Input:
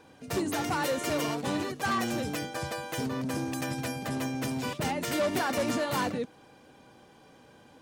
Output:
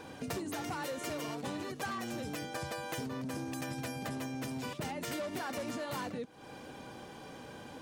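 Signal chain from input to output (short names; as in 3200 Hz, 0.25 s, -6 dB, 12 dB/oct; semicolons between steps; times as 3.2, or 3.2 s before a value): compressor 8:1, threshold -44 dBFS, peak gain reduction 19 dB; gain +7.5 dB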